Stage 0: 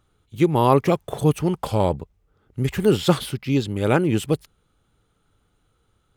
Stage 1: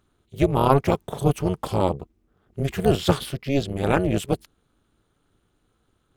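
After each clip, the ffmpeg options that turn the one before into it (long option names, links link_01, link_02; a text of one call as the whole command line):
ffmpeg -i in.wav -af "tremolo=f=280:d=0.919,volume=2dB" out.wav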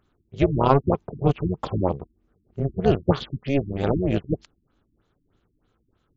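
ffmpeg -i in.wav -af "afftfilt=real='re*lt(b*sr/1024,330*pow(7700/330,0.5+0.5*sin(2*PI*3.2*pts/sr)))':imag='im*lt(b*sr/1024,330*pow(7700/330,0.5+0.5*sin(2*PI*3.2*pts/sr)))':win_size=1024:overlap=0.75" out.wav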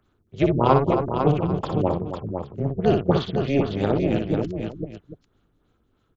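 ffmpeg -i in.wav -filter_complex "[0:a]aecho=1:1:60|270|502|795:0.531|0.282|0.473|0.15,acrossover=split=100|950[link_01][link_02][link_03];[link_01]asoftclip=type=tanh:threshold=-37dB[link_04];[link_04][link_02][link_03]amix=inputs=3:normalize=0" out.wav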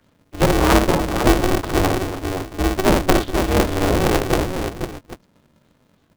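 ffmpeg -i in.wav -filter_complex "[0:a]acrossover=split=130|1500[link_01][link_02][link_03];[link_03]acompressor=mode=upward:threshold=-59dB:ratio=2.5[link_04];[link_01][link_02][link_04]amix=inputs=3:normalize=0,lowshelf=frequency=300:gain=12,aeval=exprs='val(0)*sgn(sin(2*PI*190*n/s))':channel_layout=same,volume=-2.5dB" out.wav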